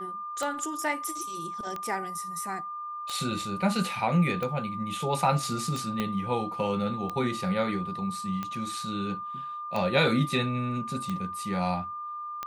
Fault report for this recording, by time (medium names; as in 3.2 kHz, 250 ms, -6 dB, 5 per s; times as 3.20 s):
tick 45 rpm -19 dBFS
whine 1.2 kHz -34 dBFS
6.00 s: pop -15 dBFS